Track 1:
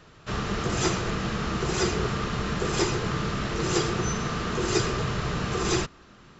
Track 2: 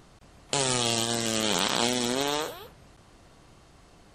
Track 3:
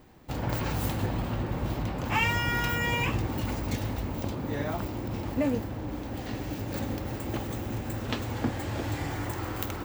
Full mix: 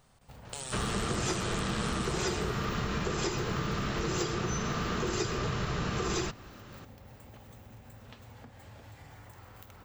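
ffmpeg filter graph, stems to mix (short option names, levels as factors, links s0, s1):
-filter_complex "[0:a]acompressor=threshold=0.0355:ratio=6,adelay=450,volume=1.06[s0];[1:a]equalizer=f=8700:t=o:w=0.35:g=7,volume=0.335[s1];[2:a]acompressor=threshold=0.0224:ratio=2.5,volume=0.224[s2];[s1][s2]amix=inputs=2:normalize=0,equalizer=f=320:w=3.4:g=-13.5,acompressor=threshold=0.00398:ratio=1.5,volume=1[s3];[s0][s3]amix=inputs=2:normalize=0"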